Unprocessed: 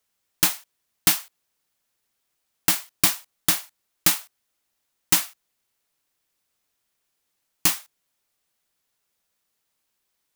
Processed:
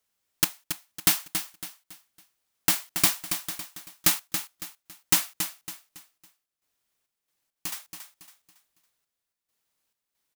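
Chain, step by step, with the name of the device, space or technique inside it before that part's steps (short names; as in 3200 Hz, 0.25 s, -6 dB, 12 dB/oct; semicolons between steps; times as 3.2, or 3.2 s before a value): trance gate with a delay (step gate "xx..xx.x.xxxx" 68 bpm -12 dB; feedback echo 0.278 s, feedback 35%, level -8.5 dB); gain -2.5 dB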